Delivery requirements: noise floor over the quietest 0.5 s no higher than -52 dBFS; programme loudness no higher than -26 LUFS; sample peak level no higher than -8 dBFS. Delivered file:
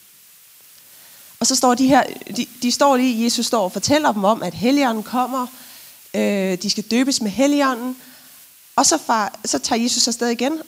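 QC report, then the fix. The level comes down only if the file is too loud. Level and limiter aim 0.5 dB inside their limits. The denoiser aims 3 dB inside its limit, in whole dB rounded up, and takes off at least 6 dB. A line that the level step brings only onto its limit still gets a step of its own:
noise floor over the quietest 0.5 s -48 dBFS: fail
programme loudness -18.5 LUFS: fail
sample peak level -2.5 dBFS: fail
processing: trim -8 dB

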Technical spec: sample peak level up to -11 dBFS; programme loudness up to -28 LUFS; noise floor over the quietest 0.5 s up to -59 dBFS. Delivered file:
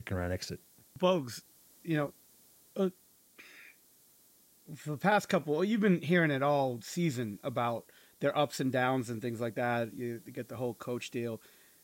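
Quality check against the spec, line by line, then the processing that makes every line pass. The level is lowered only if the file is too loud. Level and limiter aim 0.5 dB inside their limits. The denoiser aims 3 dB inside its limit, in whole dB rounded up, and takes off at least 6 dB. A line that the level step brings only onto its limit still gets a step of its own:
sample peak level -16.0 dBFS: pass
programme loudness -33.0 LUFS: pass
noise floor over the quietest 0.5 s -64 dBFS: pass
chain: none needed

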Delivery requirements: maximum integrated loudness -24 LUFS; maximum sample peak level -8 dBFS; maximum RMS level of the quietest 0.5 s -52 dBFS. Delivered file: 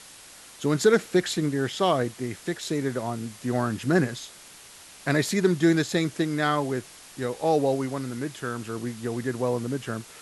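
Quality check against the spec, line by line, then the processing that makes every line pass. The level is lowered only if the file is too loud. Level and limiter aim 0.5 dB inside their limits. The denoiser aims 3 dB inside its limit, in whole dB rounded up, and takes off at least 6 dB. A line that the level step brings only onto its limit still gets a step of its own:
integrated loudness -26.5 LUFS: pass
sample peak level -8.5 dBFS: pass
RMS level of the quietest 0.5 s -48 dBFS: fail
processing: noise reduction 7 dB, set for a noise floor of -48 dBFS

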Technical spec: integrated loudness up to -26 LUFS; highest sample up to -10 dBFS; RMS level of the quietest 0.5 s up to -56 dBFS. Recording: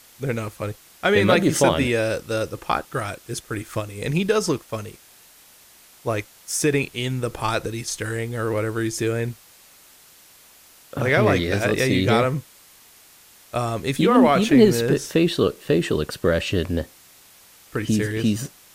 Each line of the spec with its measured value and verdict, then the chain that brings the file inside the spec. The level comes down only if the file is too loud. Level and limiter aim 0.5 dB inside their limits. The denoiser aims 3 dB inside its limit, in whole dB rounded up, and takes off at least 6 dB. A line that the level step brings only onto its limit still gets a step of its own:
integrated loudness -22.0 LUFS: fail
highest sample -3.0 dBFS: fail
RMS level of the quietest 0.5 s -51 dBFS: fail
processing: noise reduction 6 dB, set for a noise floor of -51 dBFS; trim -4.5 dB; peak limiter -10.5 dBFS

